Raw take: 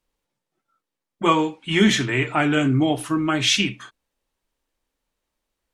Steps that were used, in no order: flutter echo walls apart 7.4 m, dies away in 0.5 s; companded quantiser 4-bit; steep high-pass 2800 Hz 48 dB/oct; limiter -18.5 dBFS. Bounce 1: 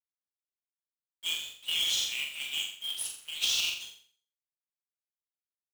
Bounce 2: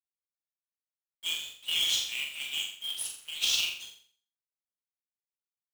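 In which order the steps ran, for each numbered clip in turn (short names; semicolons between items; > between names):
steep high-pass > companded quantiser > flutter echo > limiter; steep high-pass > companded quantiser > limiter > flutter echo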